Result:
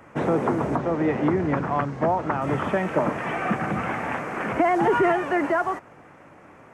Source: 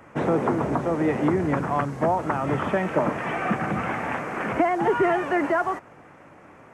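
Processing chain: 0.76–2.42 LPF 5300 Hz 12 dB/oct; 4.64–5.12 fast leveller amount 50%

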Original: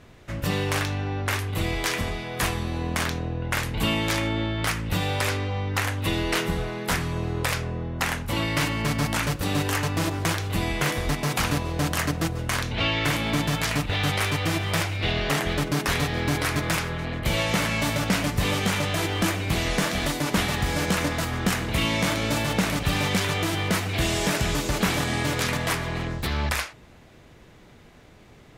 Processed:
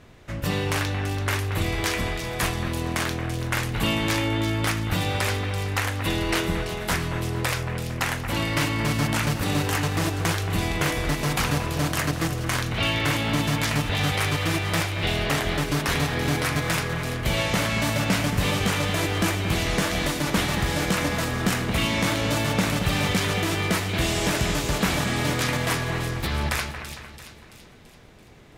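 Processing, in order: split-band echo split 2700 Hz, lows 0.227 s, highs 0.335 s, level -9 dB

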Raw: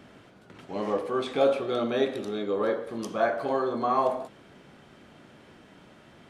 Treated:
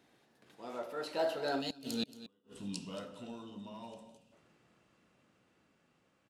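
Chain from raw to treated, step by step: Doppler pass-by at 2.11, 53 m/s, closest 9.4 m; flipped gate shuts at -23 dBFS, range -40 dB; in parallel at -11.5 dB: hard clip -37.5 dBFS, distortion -8 dB; on the sum: low shelf 100 Hz -5.5 dB; echo 0.227 s -15 dB; spectral gain 1.61–4.32, 280–2400 Hz -13 dB; high shelf 4300 Hz +8 dB; gain +3.5 dB

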